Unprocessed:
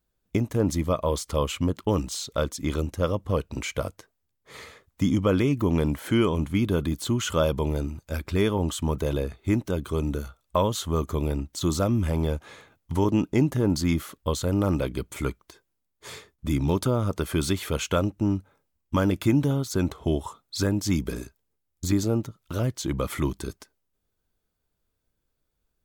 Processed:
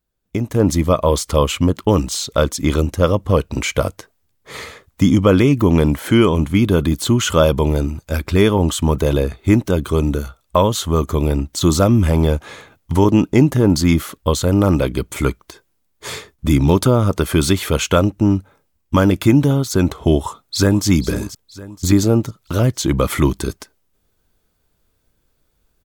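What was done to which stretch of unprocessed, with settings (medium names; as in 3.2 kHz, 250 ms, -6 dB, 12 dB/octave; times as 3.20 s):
20.17–20.86 s: echo throw 480 ms, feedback 40%, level -12 dB
whole clip: level rider gain up to 13 dB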